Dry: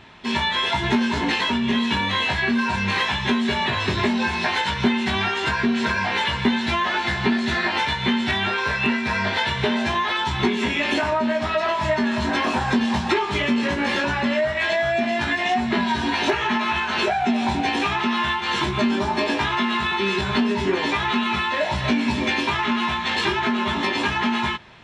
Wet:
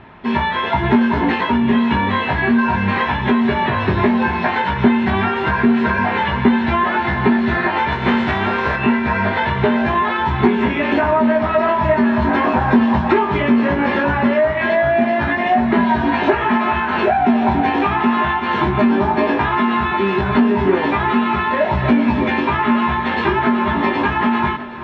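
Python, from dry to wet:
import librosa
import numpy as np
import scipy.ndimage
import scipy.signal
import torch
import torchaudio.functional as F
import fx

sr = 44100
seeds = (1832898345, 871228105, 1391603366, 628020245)

y = fx.spec_flatten(x, sr, power=0.68, at=(7.91, 8.75), fade=0.02)
y = scipy.signal.sosfilt(scipy.signal.butter(2, 1600.0, 'lowpass', fs=sr, output='sos'), y)
y = fx.echo_heads(y, sr, ms=382, heads='first and third', feedback_pct=65, wet_db=-18)
y = y * 10.0 ** (7.0 / 20.0)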